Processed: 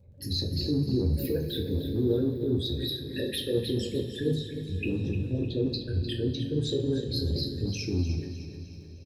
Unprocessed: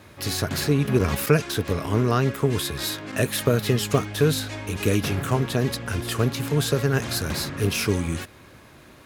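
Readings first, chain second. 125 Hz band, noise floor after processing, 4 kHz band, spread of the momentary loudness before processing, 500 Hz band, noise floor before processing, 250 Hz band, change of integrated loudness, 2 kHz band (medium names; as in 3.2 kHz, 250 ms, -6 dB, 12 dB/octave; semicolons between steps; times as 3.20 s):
-6.0 dB, -44 dBFS, -4.0 dB, 6 LU, -6.0 dB, -49 dBFS, -3.5 dB, -6.0 dB, -16.0 dB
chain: resonances exaggerated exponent 3; elliptic band-stop 550–1800 Hz; peak limiter -16 dBFS, peak gain reduction 7.5 dB; transient shaper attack -2 dB, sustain -6 dB; touch-sensitive phaser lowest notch 290 Hz, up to 3.7 kHz, full sweep at -21 dBFS; feedback delay 304 ms, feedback 45%, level -11 dB; crackle 32 per s -51 dBFS; two-slope reverb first 0.35 s, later 4 s, from -18 dB, DRR 0 dB; trim -4.5 dB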